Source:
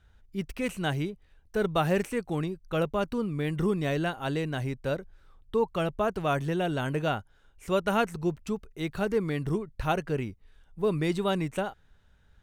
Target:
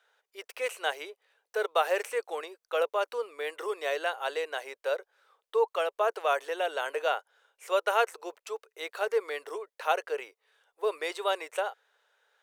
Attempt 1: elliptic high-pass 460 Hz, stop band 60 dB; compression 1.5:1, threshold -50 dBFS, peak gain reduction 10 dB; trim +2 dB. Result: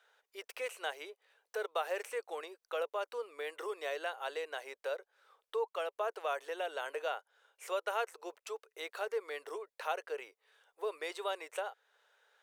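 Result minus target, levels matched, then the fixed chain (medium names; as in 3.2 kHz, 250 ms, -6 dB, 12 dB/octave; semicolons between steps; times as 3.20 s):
compression: peak gain reduction +10 dB
elliptic high-pass 460 Hz, stop band 60 dB; trim +2 dB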